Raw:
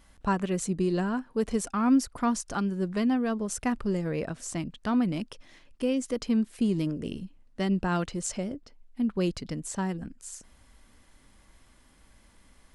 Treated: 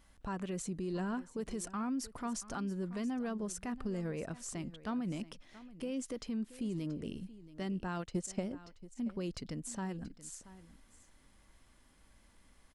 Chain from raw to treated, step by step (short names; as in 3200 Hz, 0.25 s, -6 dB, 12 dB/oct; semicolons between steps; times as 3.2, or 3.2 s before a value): limiter -24.5 dBFS, peak gain reduction 9.5 dB; 7.89–8.49 transient shaper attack +7 dB, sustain -10 dB; on a send: echo 0.679 s -17 dB; on the sum: gain -6 dB